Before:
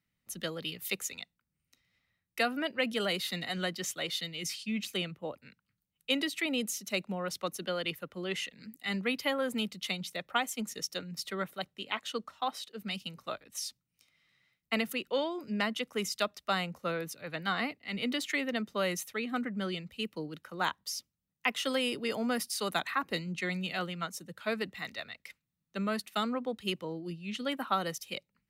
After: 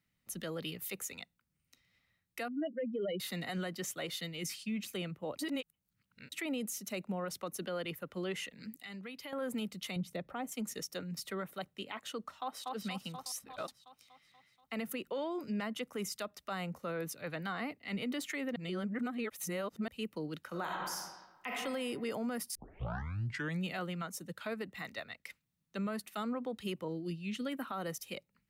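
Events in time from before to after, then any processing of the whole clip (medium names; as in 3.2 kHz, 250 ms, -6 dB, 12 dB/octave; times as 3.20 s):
2.48–3.20 s: spectral contrast enhancement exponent 3.2
5.39–6.32 s: reverse
8.80–9.33 s: compression 4:1, threshold -47 dBFS
9.96–10.52 s: tilt shelf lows +7.5 dB, about 710 Hz
12.32–12.73 s: echo throw 240 ms, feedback 65%, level -9 dB
13.26–13.68 s: reverse
18.56–19.88 s: reverse
20.47–21.50 s: reverb throw, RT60 1.1 s, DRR 0 dB
22.55 s: tape start 1.07 s
24.28–25.29 s: transient shaper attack +2 dB, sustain -3 dB
26.88–27.72 s: peaking EQ 860 Hz -8 dB 1.1 oct
whole clip: dynamic bell 3.9 kHz, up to -8 dB, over -49 dBFS, Q 0.72; compression, threshold -33 dBFS; peak limiter -31 dBFS; trim +1.5 dB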